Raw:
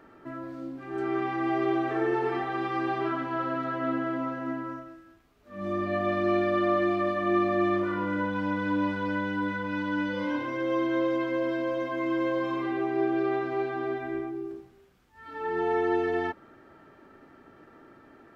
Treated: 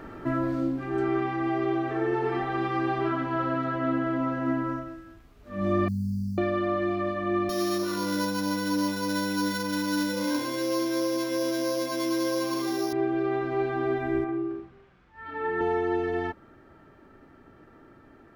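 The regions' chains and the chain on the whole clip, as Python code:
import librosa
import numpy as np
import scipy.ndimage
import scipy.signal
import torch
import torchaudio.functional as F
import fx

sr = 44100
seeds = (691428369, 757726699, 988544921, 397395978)

y = fx.chain(x, sr, fx.quant_dither(seeds[0], bits=10, dither='none'),
    fx.brickwall_bandstop(low_hz=240.0, high_hz=4200.0), at=(5.88, 6.38))
y = fx.chain(y, sr, fx.sample_sort(block=8),
    fx.highpass(hz=180.0, slope=12), at=(7.49, 12.93))
y = fx.chain(y, sr, fx.lowpass(hz=2000.0, slope=12),
    fx.tilt_eq(slope=2.5),
    fx.room_flutter(wall_m=7.7, rt60_s=0.42), at=(14.24, 15.61))
y = fx.low_shelf(y, sr, hz=130.0, db=12.0)
y = fx.rider(y, sr, range_db=10, speed_s=0.5)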